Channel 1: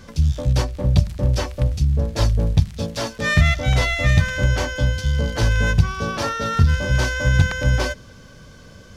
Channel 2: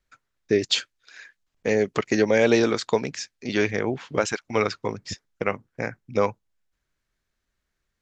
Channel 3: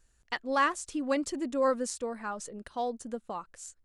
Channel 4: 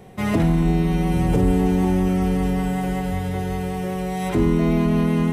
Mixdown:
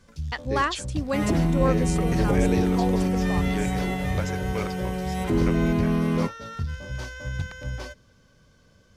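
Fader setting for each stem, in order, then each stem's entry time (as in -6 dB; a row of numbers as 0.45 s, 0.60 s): -14.5 dB, -10.5 dB, +1.5 dB, -4.0 dB; 0.00 s, 0.00 s, 0.00 s, 0.95 s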